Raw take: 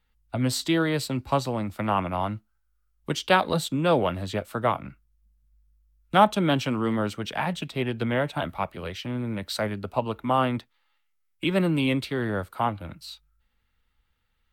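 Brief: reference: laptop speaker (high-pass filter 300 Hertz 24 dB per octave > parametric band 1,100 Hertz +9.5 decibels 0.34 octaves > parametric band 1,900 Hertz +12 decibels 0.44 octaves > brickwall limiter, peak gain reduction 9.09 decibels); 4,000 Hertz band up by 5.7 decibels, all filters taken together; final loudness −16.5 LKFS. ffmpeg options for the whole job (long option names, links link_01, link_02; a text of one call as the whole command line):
ffmpeg -i in.wav -af "highpass=frequency=300:width=0.5412,highpass=frequency=300:width=1.3066,equalizer=frequency=1100:width_type=o:width=0.34:gain=9.5,equalizer=frequency=1900:width_type=o:width=0.44:gain=12,equalizer=frequency=4000:width_type=o:gain=6,volume=9dB,alimiter=limit=-1dB:level=0:latency=1" out.wav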